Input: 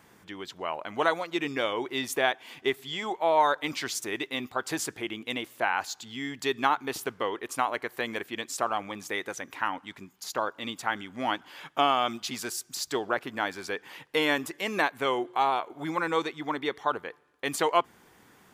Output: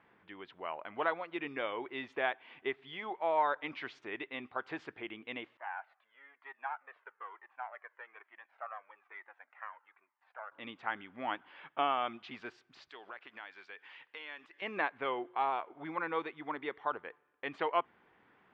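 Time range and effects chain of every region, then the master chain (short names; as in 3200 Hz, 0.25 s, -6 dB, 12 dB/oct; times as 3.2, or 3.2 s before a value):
5.57–10.52 half-wave gain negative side -7 dB + Butterworth band-pass 1200 Hz, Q 0.84 + cascading flanger falling 1.1 Hz
12.89–14.62 tilt +4.5 dB/oct + compressor 2.5:1, threshold -41 dBFS
whole clip: LPF 2800 Hz 24 dB/oct; low shelf 270 Hz -8 dB; gain -6.5 dB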